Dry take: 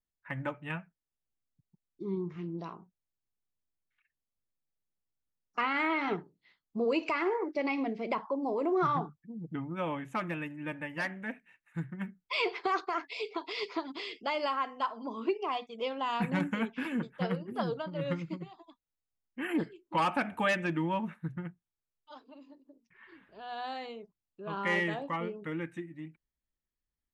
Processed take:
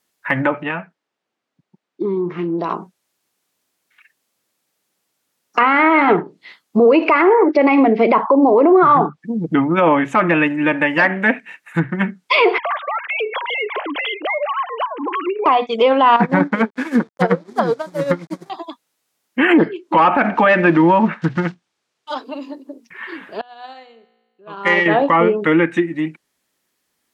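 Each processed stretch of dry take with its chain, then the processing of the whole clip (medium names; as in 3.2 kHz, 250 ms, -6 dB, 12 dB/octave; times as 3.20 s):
0.63–2.70 s: high-pass 240 Hz 6 dB/octave + compression, threshold -38 dBFS + tape spacing loss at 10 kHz 24 dB
12.58–15.46 s: formants replaced by sine waves + treble shelf 2.1 kHz +10 dB + compression, threshold -44 dBFS
16.16–18.50 s: send-on-delta sampling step -46 dBFS + peaking EQ 2.8 kHz -12 dB 0.35 oct + upward expansion 2.5:1, over -42 dBFS
20.24–22.16 s: block-companded coder 5-bit + low-pass 6.1 kHz
23.41–24.86 s: feedback comb 57 Hz, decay 1.4 s + upward expansion 2.5:1, over -48 dBFS
whole clip: low-pass that closes with the level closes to 1.9 kHz, closed at -30 dBFS; high-pass 250 Hz 12 dB/octave; loudness maximiser +28.5 dB; trim -3.5 dB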